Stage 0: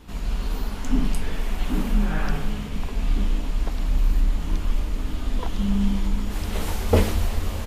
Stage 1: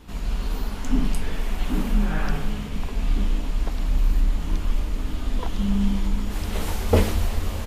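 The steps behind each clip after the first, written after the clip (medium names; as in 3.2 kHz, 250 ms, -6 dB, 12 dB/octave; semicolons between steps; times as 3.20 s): no audible change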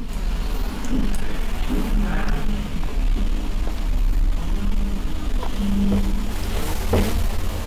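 reverse echo 1014 ms -11.5 dB; flange 0.42 Hz, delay 4.2 ms, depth 6 ms, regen +69%; waveshaping leveller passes 2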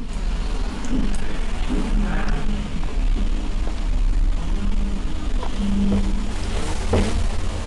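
resampled via 22.05 kHz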